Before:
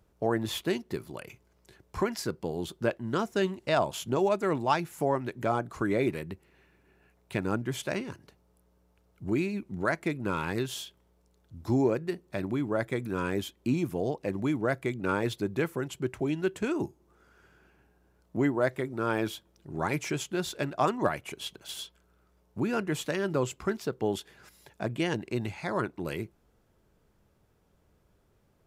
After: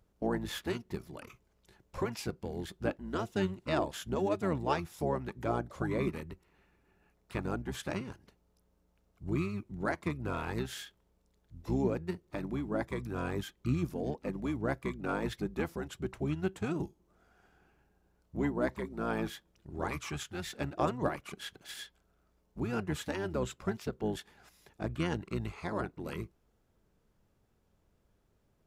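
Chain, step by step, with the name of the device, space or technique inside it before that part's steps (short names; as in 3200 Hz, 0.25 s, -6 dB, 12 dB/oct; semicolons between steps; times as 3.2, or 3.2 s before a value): 19.9–20.52 dynamic EQ 430 Hz, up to -6 dB, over -43 dBFS, Q 0.81; octave pedal (harmoniser -12 st -3 dB); gain -6.5 dB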